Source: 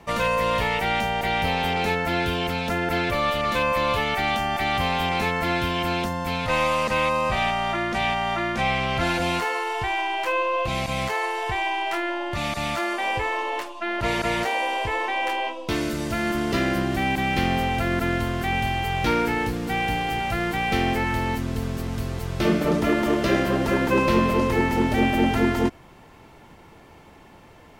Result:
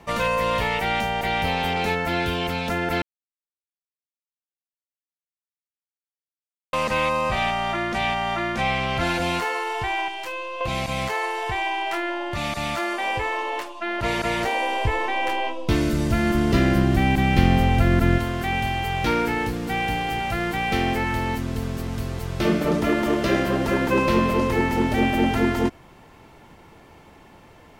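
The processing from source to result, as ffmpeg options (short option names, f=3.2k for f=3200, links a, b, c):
-filter_complex "[0:a]asettb=1/sr,asplit=3[a][b][c];[a]atrim=end=10.084[d];[b]atrim=start=10.08:end=10.61,asetpts=PTS-STARTPTS,afade=t=in:d=0.004:c=qsin,afade=t=out:st=0.526:d=0.004:c=qsin,acrossover=split=220|3000[e][f][g];[f]acompressor=threshold=-34dB:ratio=3:attack=3.2:release=140:knee=2.83:detection=peak[h];[e][h][g]amix=inputs=3:normalize=0[i];[c]atrim=start=10.606[j];[d][i]acrossfade=d=0.004:c1=hsin:c2=qsin[k];[k][j]acrossfade=d=0.004:c1=qsin:c2=hsin,asettb=1/sr,asplit=3[l][m][n];[l]atrim=end=14.434[o];[m]atrim=start=14.43:end=18.18,asetpts=PTS-STARTPTS,afade=t=in:d=0.004:c=qsin,afade=t=out:st=3.746:d=0.004:c=qsin,lowshelf=f=210:g=12[p];[n]atrim=start=18.176[q];[o][p]acrossfade=d=0.004:c1=hsin:c2=qsin[r];[r][q]acrossfade=d=0.004:c1=qsin:c2=hsin,asplit=3[s][t][u];[s]atrim=end=3.02,asetpts=PTS-STARTPTS,afade=t=out:st=3.016:d=0.004:c=hsin[v];[t]atrim=start=3.02:end=6.73,asetpts=PTS-STARTPTS,volume=0[w];[u]atrim=start=6.73,asetpts=PTS-STARTPTS,afade=t=in:d=0.004:c=hsin[x];[v][w][x]concat=n=3:v=0:a=1"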